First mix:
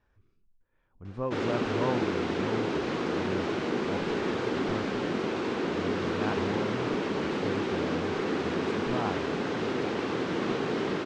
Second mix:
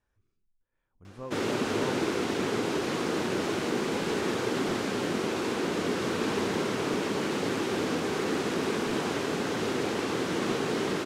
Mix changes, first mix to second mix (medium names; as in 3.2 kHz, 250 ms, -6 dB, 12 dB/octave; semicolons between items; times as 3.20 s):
speech -8.5 dB; master: remove distance through air 140 m